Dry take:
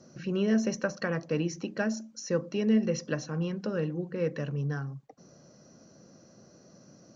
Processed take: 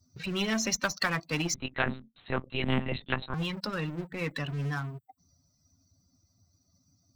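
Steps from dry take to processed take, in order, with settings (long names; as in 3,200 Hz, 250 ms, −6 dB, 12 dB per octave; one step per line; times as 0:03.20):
spectral dynamics exaggerated over time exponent 2
parametric band 480 Hz −14 dB 1 octave
leveller curve on the samples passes 1
0:01.54–0:03.34: one-pitch LPC vocoder at 8 kHz 130 Hz
every bin compressed towards the loudest bin 2 to 1
level +4.5 dB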